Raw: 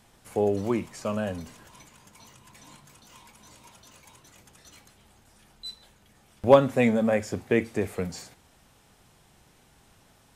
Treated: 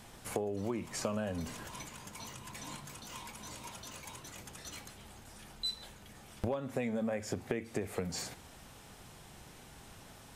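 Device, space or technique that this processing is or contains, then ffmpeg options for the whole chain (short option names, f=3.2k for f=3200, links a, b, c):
serial compression, leveller first: -af "acompressor=threshold=-28dB:ratio=2.5,acompressor=threshold=-38dB:ratio=6,volume=5.5dB"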